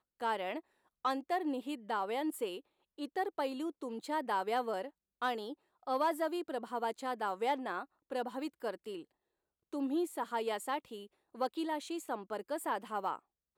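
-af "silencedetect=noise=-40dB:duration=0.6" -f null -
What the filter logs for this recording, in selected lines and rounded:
silence_start: 9.00
silence_end: 9.73 | silence_duration: 0.73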